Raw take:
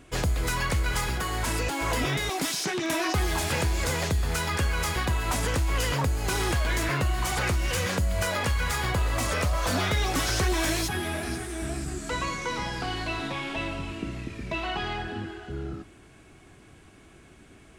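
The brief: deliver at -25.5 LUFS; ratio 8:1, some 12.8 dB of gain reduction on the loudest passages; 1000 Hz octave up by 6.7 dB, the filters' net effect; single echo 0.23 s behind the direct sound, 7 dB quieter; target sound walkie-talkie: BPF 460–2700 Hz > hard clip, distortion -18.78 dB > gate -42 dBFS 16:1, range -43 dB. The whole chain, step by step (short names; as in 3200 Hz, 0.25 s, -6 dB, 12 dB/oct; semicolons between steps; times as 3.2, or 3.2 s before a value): bell 1000 Hz +8.5 dB; compressor 8:1, threshold -34 dBFS; BPF 460–2700 Hz; echo 0.23 s -7 dB; hard clip -32.5 dBFS; gate -42 dBFS 16:1, range -43 dB; gain +13.5 dB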